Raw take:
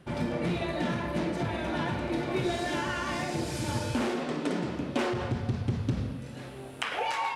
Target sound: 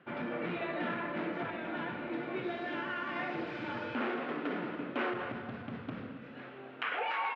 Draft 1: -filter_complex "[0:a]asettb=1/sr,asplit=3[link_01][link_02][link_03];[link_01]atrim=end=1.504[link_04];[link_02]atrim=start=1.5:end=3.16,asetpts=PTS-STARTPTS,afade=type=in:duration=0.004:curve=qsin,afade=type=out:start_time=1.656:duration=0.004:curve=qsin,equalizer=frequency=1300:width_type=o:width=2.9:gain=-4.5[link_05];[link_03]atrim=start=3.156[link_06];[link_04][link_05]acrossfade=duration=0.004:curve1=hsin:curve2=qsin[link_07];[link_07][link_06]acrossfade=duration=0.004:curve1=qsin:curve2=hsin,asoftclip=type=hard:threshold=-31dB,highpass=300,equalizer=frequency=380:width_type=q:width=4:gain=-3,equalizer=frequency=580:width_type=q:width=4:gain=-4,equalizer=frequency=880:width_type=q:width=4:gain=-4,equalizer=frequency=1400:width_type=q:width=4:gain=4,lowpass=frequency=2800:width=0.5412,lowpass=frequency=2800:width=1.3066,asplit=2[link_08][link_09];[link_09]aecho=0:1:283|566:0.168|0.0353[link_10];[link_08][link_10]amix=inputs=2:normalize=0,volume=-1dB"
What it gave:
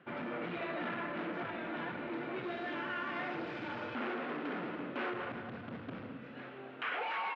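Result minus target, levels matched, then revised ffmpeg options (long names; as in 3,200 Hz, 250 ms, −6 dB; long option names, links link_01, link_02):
hard clipping: distortion +9 dB
-filter_complex "[0:a]asettb=1/sr,asplit=3[link_01][link_02][link_03];[link_01]atrim=end=1.504[link_04];[link_02]atrim=start=1.5:end=3.16,asetpts=PTS-STARTPTS,afade=type=in:duration=0.004:curve=qsin,afade=type=out:start_time=1.656:duration=0.004:curve=qsin,equalizer=frequency=1300:width_type=o:width=2.9:gain=-4.5[link_05];[link_03]atrim=start=3.156[link_06];[link_04][link_05]acrossfade=duration=0.004:curve1=hsin:curve2=qsin[link_07];[link_07][link_06]acrossfade=duration=0.004:curve1=qsin:curve2=hsin,asoftclip=type=hard:threshold=-24.5dB,highpass=300,equalizer=frequency=380:width_type=q:width=4:gain=-3,equalizer=frequency=580:width_type=q:width=4:gain=-4,equalizer=frequency=880:width_type=q:width=4:gain=-4,equalizer=frequency=1400:width_type=q:width=4:gain=4,lowpass=frequency=2800:width=0.5412,lowpass=frequency=2800:width=1.3066,asplit=2[link_08][link_09];[link_09]aecho=0:1:283|566:0.168|0.0353[link_10];[link_08][link_10]amix=inputs=2:normalize=0,volume=-1dB"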